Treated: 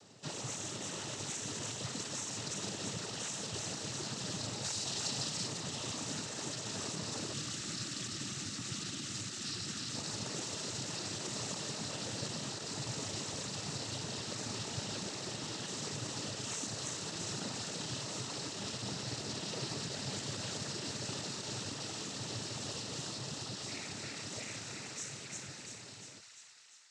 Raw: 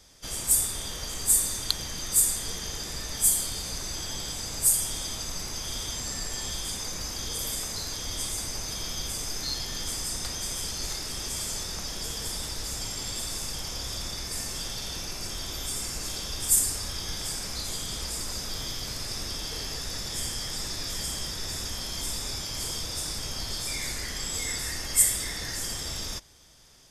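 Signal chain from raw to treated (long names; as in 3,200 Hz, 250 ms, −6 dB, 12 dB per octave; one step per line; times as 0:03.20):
fade-out on the ending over 6.39 s
tilt shelving filter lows +5.5 dB, about 1,200 Hz
downward compressor 2 to 1, threshold −34 dBFS, peak gain reduction 7.5 dB
delay with a high-pass on its return 346 ms, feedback 63%, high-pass 1,500 Hz, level −4 dB
wave folding −29 dBFS
0:04.64–0:05.47: parametric band 4,900 Hz +6.5 dB 0.77 octaves
cochlear-implant simulation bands 12
0:07.33–0:09.94: gain on a spectral selection 370–1,100 Hz −10 dB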